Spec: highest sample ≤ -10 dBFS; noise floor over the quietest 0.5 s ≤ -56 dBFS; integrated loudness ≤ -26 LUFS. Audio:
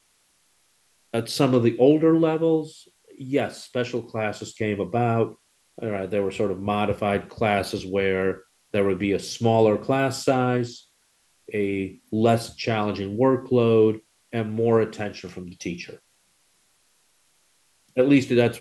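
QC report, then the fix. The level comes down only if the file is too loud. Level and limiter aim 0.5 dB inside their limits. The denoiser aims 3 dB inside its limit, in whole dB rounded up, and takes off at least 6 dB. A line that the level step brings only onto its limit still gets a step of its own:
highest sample -6.0 dBFS: fail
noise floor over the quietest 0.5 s -65 dBFS: pass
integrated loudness -23.5 LUFS: fail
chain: trim -3 dB; peak limiter -10.5 dBFS

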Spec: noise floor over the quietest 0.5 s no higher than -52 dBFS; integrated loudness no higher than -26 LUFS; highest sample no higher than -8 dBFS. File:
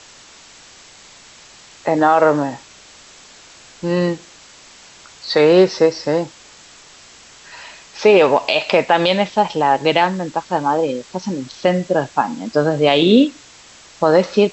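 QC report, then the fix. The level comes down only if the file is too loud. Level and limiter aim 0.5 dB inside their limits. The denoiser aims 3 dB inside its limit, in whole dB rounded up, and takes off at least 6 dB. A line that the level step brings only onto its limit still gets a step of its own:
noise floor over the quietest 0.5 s -44 dBFS: fail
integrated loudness -16.5 LUFS: fail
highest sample -2.5 dBFS: fail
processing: trim -10 dB

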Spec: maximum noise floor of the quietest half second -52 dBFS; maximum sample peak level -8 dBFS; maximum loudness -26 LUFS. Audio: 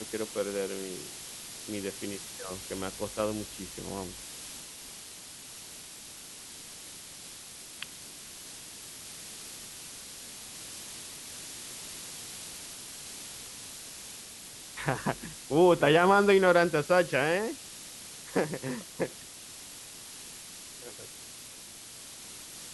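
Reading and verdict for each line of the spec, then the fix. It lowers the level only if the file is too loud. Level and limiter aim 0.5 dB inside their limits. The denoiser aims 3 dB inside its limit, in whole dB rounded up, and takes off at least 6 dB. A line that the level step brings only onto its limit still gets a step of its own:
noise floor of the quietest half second -47 dBFS: fail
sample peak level -10.5 dBFS: pass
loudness -31.5 LUFS: pass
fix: noise reduction 8 dB, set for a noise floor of -47 dBFS

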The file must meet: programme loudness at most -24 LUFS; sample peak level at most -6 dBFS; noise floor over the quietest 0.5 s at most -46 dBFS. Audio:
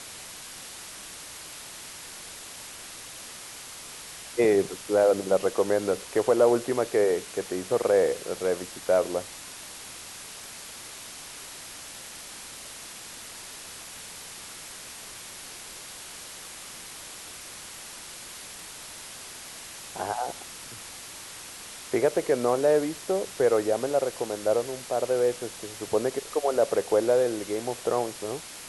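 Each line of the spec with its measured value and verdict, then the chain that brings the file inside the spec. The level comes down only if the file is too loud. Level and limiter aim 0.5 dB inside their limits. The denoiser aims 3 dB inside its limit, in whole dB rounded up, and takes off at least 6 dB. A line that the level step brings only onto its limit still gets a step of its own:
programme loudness -27.5 LUFS: pass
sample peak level -10.0 dBFS: pass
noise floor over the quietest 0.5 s -42 dBFS: fail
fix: noise reduction 7 dB, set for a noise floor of -42 dBFS

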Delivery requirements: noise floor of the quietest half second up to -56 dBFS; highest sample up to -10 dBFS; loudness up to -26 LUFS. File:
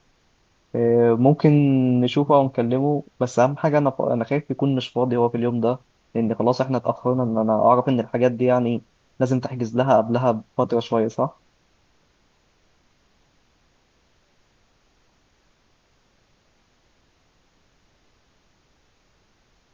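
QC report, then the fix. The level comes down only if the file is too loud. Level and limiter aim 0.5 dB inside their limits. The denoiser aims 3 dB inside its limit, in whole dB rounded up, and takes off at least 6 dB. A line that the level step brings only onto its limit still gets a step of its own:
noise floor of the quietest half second -63 dBFS: pass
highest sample -3.5 dBFS: fail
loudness -21.0 LUFS: fail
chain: trim -5.5 dB; peak limiter -10.5 dBFS

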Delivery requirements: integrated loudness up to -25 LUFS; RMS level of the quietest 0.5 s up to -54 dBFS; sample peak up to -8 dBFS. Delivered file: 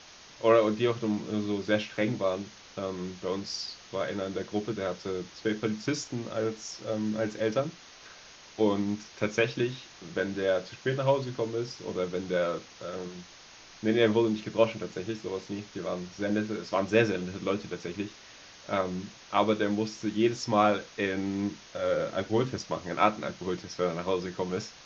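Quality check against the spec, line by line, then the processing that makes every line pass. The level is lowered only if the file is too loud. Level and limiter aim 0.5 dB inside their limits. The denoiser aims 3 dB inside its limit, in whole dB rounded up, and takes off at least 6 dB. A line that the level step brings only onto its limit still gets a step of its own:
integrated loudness -30.0 LUFS: pass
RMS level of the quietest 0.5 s -51 dBFS: fail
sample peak -7.0 dBFS: fail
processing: noise reduction 6 dB, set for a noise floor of -51 dBFS; peak limiter -8.5 dBFS

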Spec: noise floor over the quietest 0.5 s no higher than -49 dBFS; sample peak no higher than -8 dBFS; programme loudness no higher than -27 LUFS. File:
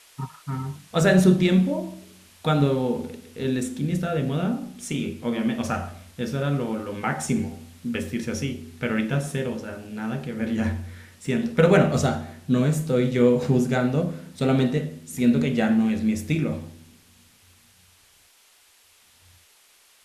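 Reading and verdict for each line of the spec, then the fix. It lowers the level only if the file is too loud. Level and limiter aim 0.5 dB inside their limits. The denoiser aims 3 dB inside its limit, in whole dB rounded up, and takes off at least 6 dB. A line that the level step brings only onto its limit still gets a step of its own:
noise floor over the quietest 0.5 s -58 dBFS: pass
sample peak -5.5 dBFS: fail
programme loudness -24.0 LUFS: fail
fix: trim -3.5 dB

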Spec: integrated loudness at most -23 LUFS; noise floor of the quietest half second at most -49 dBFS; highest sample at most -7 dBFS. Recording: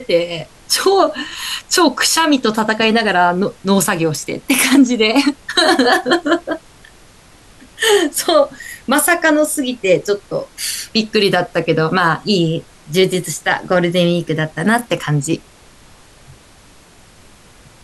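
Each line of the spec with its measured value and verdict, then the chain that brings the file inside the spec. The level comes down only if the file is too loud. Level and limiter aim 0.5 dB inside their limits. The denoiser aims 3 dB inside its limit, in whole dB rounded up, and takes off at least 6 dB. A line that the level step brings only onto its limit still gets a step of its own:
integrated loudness -15.0 LUFS: fail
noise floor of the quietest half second -45 dBFS: fail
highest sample -1.5 dBFS: fail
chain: trim -8.5 dB

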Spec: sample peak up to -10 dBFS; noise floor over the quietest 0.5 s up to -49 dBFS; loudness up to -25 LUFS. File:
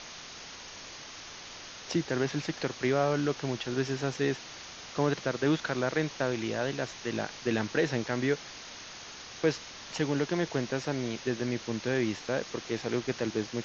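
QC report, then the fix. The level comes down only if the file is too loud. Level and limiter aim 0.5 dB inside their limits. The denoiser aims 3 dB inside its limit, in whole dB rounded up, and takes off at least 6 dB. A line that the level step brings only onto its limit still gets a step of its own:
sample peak -13.0 dBFS: pass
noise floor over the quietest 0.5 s -45 dBFS: fail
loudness -31.5 LUFS: pass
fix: noise reduction 7 dB, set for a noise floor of -45 dBFS

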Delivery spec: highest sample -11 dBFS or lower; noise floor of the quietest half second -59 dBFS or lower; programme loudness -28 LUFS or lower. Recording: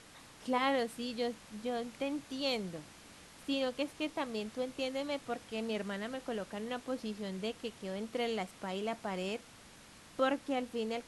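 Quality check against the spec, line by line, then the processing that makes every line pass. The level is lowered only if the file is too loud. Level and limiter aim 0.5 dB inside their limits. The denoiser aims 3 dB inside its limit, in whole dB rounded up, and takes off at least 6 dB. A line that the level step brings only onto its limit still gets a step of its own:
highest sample -18.5 dBFS: pass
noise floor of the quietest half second -56 dBFS: fail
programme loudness -37.5 LUFS: pass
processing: noise reduction 6 dB, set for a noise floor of -56 dBFS

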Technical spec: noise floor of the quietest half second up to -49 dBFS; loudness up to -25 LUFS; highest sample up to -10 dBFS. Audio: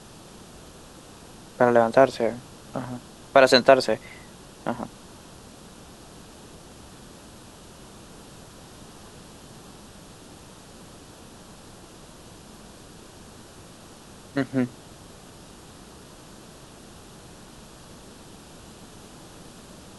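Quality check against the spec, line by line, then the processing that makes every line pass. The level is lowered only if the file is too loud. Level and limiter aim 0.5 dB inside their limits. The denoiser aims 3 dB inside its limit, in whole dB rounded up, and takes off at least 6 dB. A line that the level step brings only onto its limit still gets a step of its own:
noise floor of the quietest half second -46 dBFS: fail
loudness -22.0 LUFS: fail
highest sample -2.0 dBFS: fail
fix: trim -3.5 dB; peak limiter -10.5 dBFS

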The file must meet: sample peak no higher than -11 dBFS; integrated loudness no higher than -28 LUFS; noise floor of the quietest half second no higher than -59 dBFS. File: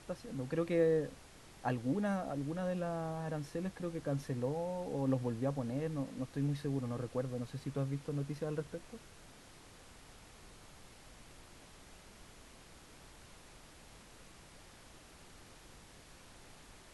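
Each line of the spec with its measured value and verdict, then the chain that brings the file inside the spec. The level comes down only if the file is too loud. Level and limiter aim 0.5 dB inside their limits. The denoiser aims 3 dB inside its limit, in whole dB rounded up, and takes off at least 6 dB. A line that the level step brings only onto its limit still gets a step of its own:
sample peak -20.0 dBFS: pass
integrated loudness -37.5 LUFS: pass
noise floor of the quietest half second -57 dBFS: fail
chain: noise reduction 6 dB, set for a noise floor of -57 dBFS

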